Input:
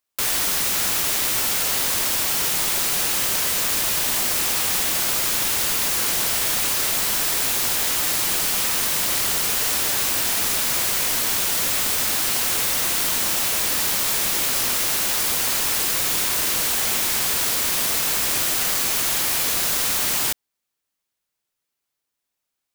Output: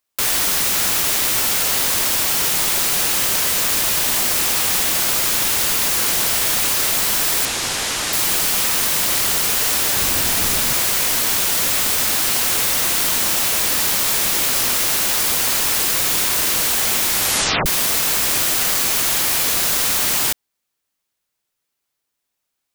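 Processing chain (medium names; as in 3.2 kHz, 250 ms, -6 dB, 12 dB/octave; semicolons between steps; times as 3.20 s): 7.45–8.13 s: low-pass 8.2 kHz 12 dB/octave; 9.96–10.74 s: bass shelf 220 Hz +8 dB; 17.12 s: tape stop 0.54 s; trim +3.5 dB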